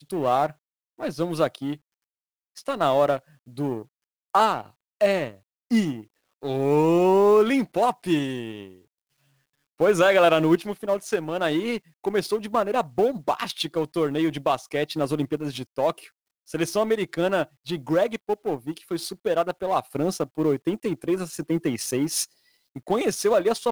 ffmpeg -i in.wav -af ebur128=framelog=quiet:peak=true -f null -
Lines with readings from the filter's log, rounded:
Integrated loudness:
  I:         -24.3 LUFS
  Threshold: -34.9 LUFS
Loudness range:
  LRA:         4.7 LU
  Threshold: -44.9 LUFS
  LRA low:   -27.0 LUFS
  LRA high:  -22.3 LUFS
True peak:
  Peak:       -7.7 dBFS